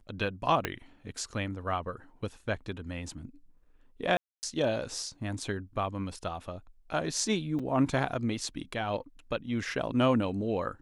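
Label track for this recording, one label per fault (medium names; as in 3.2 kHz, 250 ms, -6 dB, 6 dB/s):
0.650000	0.650000	pop -14 dBFS
4.170000	4.430000	dropout 259 ms
7.590000	7.600000	dropout 5.4 ms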